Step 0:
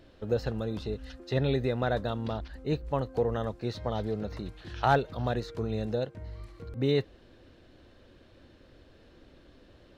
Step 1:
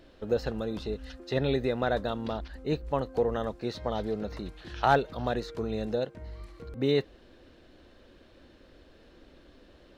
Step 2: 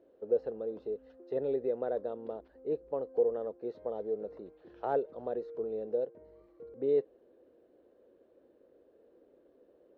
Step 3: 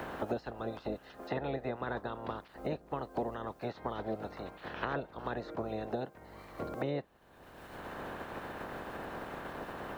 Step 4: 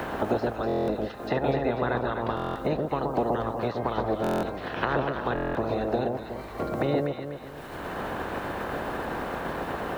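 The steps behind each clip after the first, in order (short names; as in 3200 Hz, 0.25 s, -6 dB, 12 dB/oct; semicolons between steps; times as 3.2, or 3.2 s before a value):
bell 110 Hz -8 dB 0.81 oct; gain +1.5 dB
band-pass 460 Hz, Q 3.1
spectral limiter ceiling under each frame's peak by 29 dB; three-band squash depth 100%; gain -2.5 dB
on a send: echo with dull and thin repeats by turns 0.123 s, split 1100 Hz, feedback 65%, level -2.5 dB; on the sum: stuck buffer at 0.67/2.35/4.22/5.34, samples 1024, times 8; gain +8.5 dB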